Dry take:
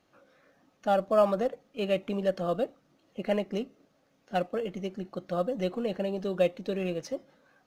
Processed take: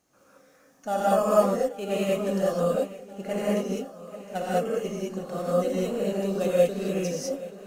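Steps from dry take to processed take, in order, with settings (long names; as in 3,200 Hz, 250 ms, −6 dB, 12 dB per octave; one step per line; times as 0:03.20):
high shelf with overshoot 5,200 Hz +10.5 dB, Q 1.5
feedback echo with a long and a short gap by turns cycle 1,380 ms, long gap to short 1.5 to 1, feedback 53%, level −17.5 dB
reverb whose tail is shaped and stops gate 230 ms rising, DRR −7.5 dB
level −4 dB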